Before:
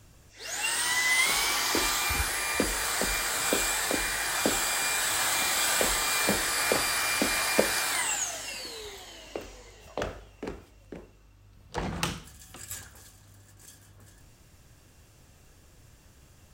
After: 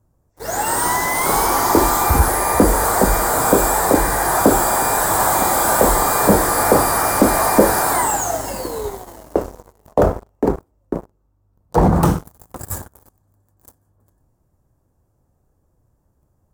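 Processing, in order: waveshaping leveller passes 5; FFT filter 960 Hz 0 dB, 2.8 kHz -25 dB, 13 kHz -6 dB; trim +3 dB

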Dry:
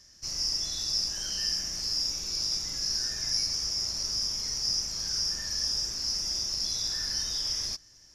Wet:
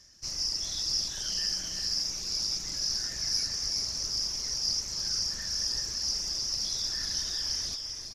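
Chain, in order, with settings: reverb removal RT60 0.64 s; multi-tap echo 331/396 ms -10.5/-6.5 dB; loudspeaker Doppler distortion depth 0.22 ms

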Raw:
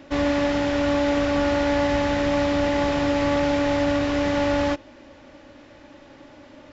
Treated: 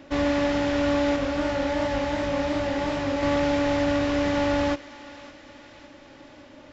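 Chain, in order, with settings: 1.16–3.23 s: chorus 2.7 Hz, delay 18.5 ms, depth 7.4 ms; thinning echo 562 ms, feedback 62%, high-pass 1 kHz, level -15 dB; trim -1.5 dB

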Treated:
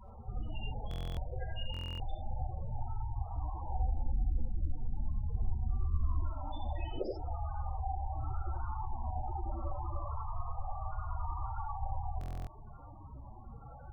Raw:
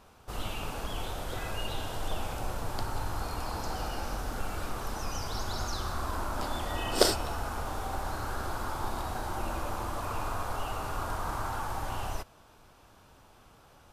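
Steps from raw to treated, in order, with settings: 3.75–6.24 s: tilt EQ -2 dB/octave; compression 2.5:1, threshold -51 dBFS, peak gain reduction 22.5 dB; loudest bins only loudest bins 8; gated-style reverb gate 110 ms rising, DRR -0.5 dB; buffer glitch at 0.89/1.72/12.19 s, samples 1024, times 11; trim +10 dB

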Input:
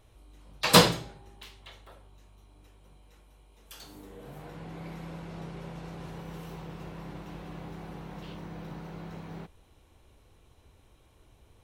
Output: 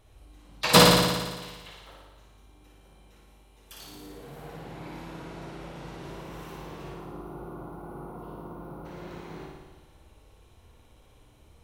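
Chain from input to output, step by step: time-frequency box 6.92–8.85 s, 1.5–9 kHz -18 dB; on a send: flutter echo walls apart 9.8 m, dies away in 1.3 s

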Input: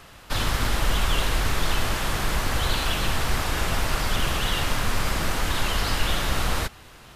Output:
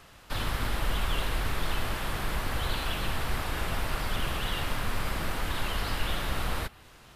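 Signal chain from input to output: dynamic bell 6.4 kHz, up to -7 dB, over -49 dBFS, Q 1.4; trim -6 dB

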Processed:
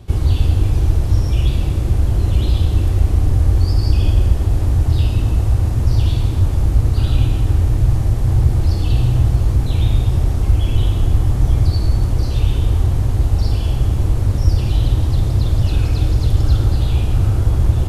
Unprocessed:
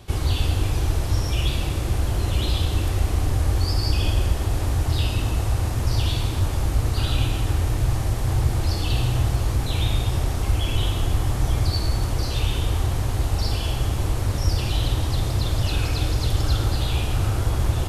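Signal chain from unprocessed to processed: bass shelf 450 Hz +12 dB; trim -4 dB

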